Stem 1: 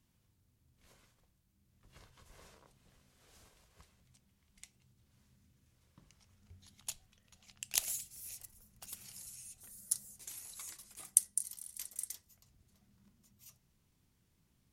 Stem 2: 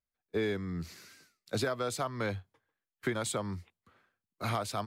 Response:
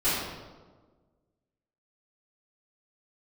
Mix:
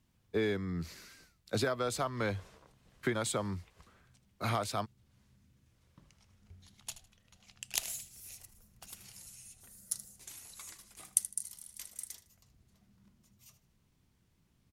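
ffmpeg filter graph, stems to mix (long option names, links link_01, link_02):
-filter_complex "[0:a]highshelf=frequency=6200:gain=-6.5,volume=2.5dB,asplit=2[link_01][link_02];[link_02]volume=-14dB[link_03];[1:a]volume=0dB[link_04];[link_03]aecho=0:1:78|156|234|312:1|0.24|0.0576|0.0138[link_05];[link_01][link_04][link_05]amix=inputs=3:normalize=0"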